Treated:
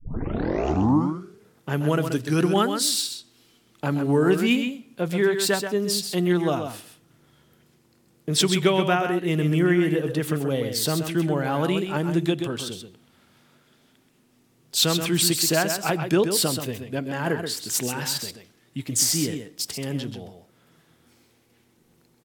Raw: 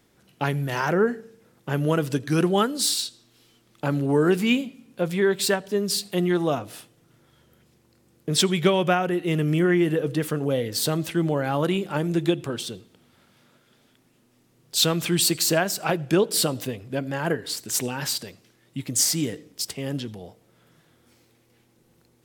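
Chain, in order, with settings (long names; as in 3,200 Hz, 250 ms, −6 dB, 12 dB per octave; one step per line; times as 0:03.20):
turntable start at the beginning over 1.44 s
parametric band 540 Hz −3.5 dB 0.25 octaves
single-tap delay 130 ms −7.5 dB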